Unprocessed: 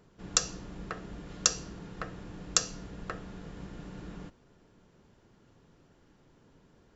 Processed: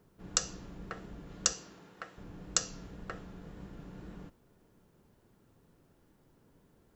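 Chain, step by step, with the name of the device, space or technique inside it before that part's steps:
0:01.52–0:02.17: high-pass filter 320 Hz → 850 Hz 6 dB per octave
plain cassette with noise reduction switched in (one half of a high-frequency compander decoder only; tape wow and flutter; white noise bed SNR 38 dB)
level −3.5 dB

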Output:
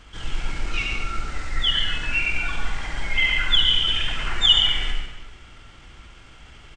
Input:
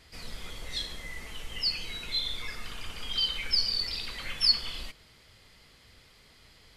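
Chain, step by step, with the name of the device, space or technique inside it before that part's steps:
monster voice (pitch shifter −7 semitones; low-shelf EQ 130 Hz +7 dB; convolution reverb RT60 1.1 s, pre-delay 68 ms, DRR 1 dB)
level +7 dB

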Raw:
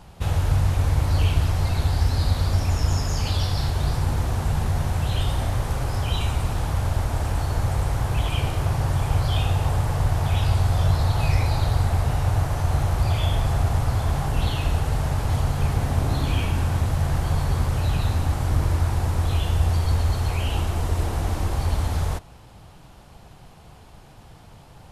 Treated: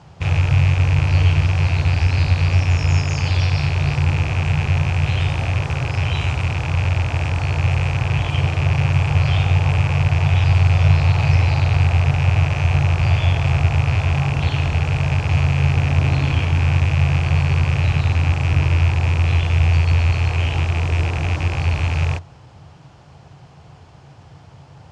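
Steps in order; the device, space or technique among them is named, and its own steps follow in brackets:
car door speaker with a rattle (loose part that buzzes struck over −26 dBFS, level −17 dBFS; loudspeaker in its box 87–6,800 Hz, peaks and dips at 87 Hz +8 dB, 140 Hz +8 dB, 210 Hz −5 dB, 3,800 Hz −4 dB)
level +2 dB

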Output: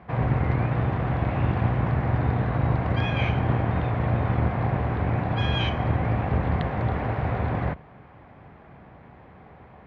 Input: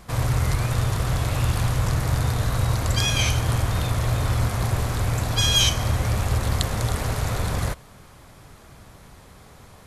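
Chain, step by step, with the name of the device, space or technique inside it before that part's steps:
sub-octave bass pedal (sub-octave generator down 2 octaves, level +3 dB; loudspeaker in its box 69–2,300 Hz, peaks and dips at 92 Hz −6 dB, 760 Hz +5 dB, 1,300 Hz −4 dB)

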